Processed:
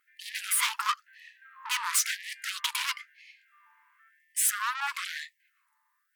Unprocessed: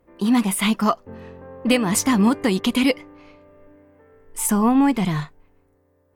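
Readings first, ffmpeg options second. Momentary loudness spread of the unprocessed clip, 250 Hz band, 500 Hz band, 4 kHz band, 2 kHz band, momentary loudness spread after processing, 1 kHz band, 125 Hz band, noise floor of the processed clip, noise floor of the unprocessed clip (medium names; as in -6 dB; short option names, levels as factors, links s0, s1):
12 LU, under -40 dB, under -40 dB, -3.5 dB, -3.0 dB, 13 LU, -8.5 dB, under -40 dB, -75 dBFS, -62 dBFS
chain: -af "aeval=exprs='(tanh(20*val(0)+0.65)-tanh(0.65))/20':c=same,afftfilt=real='re*gte(b*sr/1024,820*pow(1700/820,0.5+0.5*sin(2*PI*0.99*pts/sr)))':imag='im*gte(b*sr/1024,820*pow(1700/820,0.5+0.5*sin(2*PI*0.99*pts/sr)))':win_size=1024:overlap=0.75,volume=1.88"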